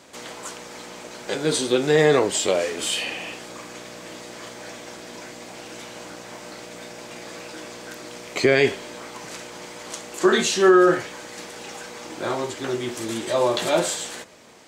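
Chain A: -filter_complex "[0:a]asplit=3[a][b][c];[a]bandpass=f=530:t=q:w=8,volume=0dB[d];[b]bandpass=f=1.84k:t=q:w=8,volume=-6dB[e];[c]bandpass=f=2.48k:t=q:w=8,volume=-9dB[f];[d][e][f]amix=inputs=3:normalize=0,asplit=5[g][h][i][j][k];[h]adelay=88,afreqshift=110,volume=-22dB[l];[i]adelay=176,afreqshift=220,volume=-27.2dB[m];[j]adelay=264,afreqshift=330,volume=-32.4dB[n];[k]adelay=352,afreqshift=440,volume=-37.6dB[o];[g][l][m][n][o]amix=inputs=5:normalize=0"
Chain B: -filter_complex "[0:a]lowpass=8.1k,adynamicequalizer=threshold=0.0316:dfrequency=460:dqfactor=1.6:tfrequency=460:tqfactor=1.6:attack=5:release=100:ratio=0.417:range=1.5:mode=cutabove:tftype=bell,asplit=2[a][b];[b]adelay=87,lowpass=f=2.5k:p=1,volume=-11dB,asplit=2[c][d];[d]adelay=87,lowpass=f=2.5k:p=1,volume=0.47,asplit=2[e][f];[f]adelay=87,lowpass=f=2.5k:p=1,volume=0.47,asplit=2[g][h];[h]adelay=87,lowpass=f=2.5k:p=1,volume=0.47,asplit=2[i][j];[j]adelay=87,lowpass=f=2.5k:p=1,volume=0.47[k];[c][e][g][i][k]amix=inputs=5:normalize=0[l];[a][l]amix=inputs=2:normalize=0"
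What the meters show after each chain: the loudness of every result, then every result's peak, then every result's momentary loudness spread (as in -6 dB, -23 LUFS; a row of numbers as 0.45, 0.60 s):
-30.5, -22.0 LUFS; -14.0, -4.5 dBFS; 22, 20 LU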